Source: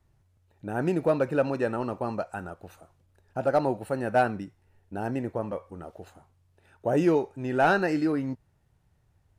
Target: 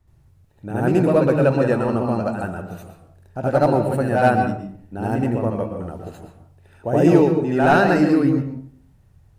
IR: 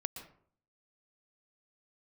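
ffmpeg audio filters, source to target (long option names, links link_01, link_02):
-filter_complex "[0:a]lowshelf=frequency=240:gain=7,asplit=2[link_01][link_02];[1:a]atrim=start_sample=2205,highshelf=frequency=8900:gain=5,adelay=74[link_03];[link_02][link_03]afir=irnorm=-1:irlink=0,volume=6dB[link_04];[link_01][link_04]amix=inputs=2:normalize=0"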